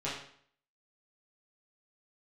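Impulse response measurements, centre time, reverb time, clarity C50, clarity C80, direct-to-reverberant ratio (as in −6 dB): 45 ms, 0.60 s, 3.0 dB, 7.0 dB, −9.0 dB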